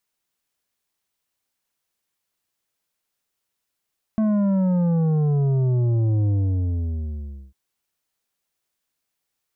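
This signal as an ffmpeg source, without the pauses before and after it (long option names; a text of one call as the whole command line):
ffmpeg -f lavfi -i "aevalsrc='0.126*clip((3.35-t)/1.25,0,1)*tanh(2.66*sin(2*PI*220*3.35/log(65/220)*(exp(log(65/220)*t/3.35)-1)))/tanh(2.66)':duration=3.35:sample_rate=44100" out.wav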